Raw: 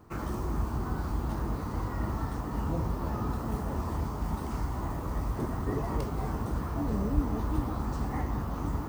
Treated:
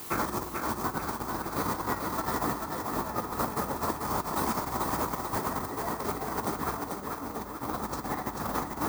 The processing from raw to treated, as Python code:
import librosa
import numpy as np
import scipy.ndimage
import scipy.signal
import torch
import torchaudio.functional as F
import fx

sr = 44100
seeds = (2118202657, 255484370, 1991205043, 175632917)

y = fx.notch(x, sr, hz=2900.0, q=5.2)
y = fx.quant_dither(y, sr, seeds[0], bits=10, dither='triangular')
y = fx.high_shelf(y, sr, hz=4400.0, db=-11.5)
y = fx.over_compress(y, sr, threshold_db=-35.0, ratio=-0.5)
y = fx.riaa(y, sr, side='recording')
y = fx.echo_thinned(y, sr, ms=440, feedback_pct=46, hz=190.0, wet_db=-4.0)
y = F.gain(torch.from_numpy(y), 8.0).numpy()